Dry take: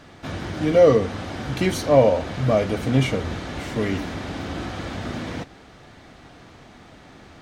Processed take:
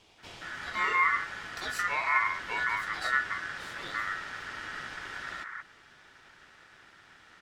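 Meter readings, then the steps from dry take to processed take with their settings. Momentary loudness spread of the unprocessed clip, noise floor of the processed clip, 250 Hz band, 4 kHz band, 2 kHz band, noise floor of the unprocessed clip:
15 LU, -58 dBFS, -28.0 dB, -7.0 dB, +4.5 dB, -47 dBFS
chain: bands offset in time highs, lows 180 ms, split 640 Hz; ring modulator 1.6 kHz; trim -6.5 dB

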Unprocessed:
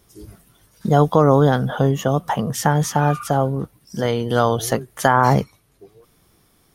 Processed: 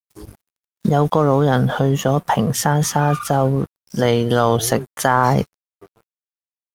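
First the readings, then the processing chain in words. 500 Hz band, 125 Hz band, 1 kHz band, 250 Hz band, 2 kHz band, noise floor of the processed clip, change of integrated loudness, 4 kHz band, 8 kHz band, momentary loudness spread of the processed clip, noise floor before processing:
+0.5 dB, +1.0 dB, +0.5 dB, +1.5 dB, +1.0 dB, under -85 dBFS, +0.5 dB, +3.5 dB, +4.5 dB, 5 LU, -59 dBFS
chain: in parallel at +2.5 dB: compressor with a negative ratio -20 dBFS, ratio -1; on the sum: crossover distortion -35 dBFS; trim -4 dB

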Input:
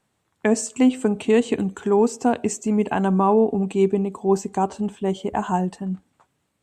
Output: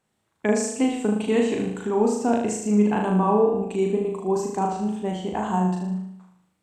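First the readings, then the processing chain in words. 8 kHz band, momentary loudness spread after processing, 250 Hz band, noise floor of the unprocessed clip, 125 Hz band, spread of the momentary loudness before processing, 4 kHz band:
-1.5 dB, 8 LU, -1.5 dB, -72 dBFS, -1.0 dB, 7 LU, -1.5 dB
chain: flutter echo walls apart 6.5 m, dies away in 0.75 s; wow and flutter 29 cents; trim -4.5 dB

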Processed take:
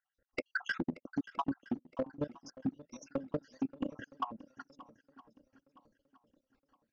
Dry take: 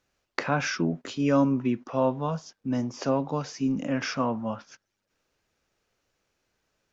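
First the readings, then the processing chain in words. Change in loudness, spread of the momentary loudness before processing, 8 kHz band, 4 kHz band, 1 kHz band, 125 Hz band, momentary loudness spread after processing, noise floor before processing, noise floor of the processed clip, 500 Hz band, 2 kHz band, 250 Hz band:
-12.0 dB, 10 LU, no reading, -14.0 dB, -11.0 dB, -16.5 dB, 15 LU, -81 dBFS, under -85 dBFS, -14.0 dB, -7.0 dB, -12.0 dB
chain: random holes in the spectrogram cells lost 74%; treble shelf 4.1 kHz -6 dB; comb 3.7 ms, depth 44%; compression 8:1, threshold -35 dBFS, peak gain reduction 15 dB; transient shaper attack +10 dB, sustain -11 dB; level held to a coarse grid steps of 16 dB; overload inside the chain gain 29 dB; distance through air 120 m; on a send: shuffle delay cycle 966 ms, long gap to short 1.5:1, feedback 34%, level -18 dB; on the sum: trim +3 dB

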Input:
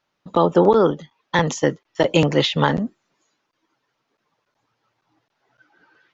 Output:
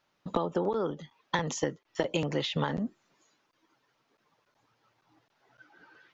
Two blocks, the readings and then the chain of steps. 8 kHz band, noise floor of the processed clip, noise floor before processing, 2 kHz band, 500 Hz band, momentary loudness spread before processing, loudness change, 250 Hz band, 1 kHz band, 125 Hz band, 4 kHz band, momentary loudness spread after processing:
no reading, -75 dBFS, -75 dBFS, -12.0 dB, -14.0 dB, 9 LU, -13.0 dB, -12.5 dB, -13.0 dB, -12.5 dB, -11.5 dB, 6 LU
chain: compression 12:1, threshold -26 dBFS, peak gain reduction 16.5 dB

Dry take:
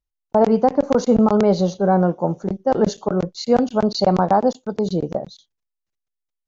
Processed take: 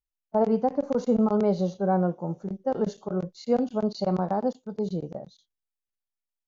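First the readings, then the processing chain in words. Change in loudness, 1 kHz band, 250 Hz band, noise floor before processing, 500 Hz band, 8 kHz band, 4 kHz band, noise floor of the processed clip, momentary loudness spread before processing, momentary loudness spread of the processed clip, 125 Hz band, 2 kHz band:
-8.0 dB, -10.0 dB, -7.5 dB, -82 dBFS, -8.0 dB, no reading, -14.5 dB, under -85 dBFS, 8 LU, 9 LU, -7.5 dB, -11.5 dB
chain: harmonic-percussive split percussive -9 dB; trim -7 dB

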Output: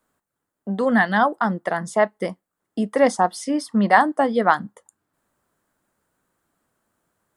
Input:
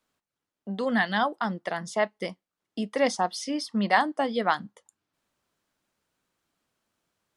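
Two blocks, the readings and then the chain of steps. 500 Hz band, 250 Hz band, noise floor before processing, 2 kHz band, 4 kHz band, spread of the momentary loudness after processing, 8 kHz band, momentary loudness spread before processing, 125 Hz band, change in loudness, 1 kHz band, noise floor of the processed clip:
+7.5 dB, +7.5 dB, under -85 dBFS, +6.0 dB, -2.0 dB, 14 LU, +3.5 dB, 14 LU, +7.5 dB, +7.0 dB, +7.5 dB, -82 dBFS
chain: high-order bell 3.7 kHz -9.5 dB; trim +7.5 dB

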